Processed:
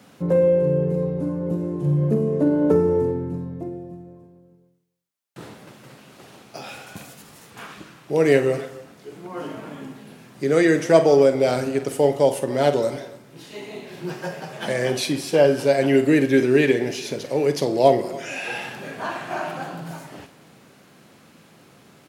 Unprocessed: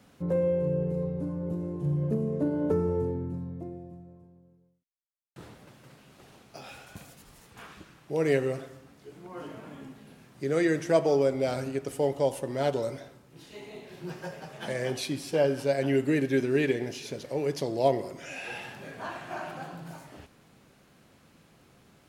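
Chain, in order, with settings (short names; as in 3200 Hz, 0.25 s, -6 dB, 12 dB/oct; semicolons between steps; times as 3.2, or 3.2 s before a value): HPF 130 Hz; doubler 48 ms -12 dB; echo 0.283 s -20.5 dB; gain +8.5 dB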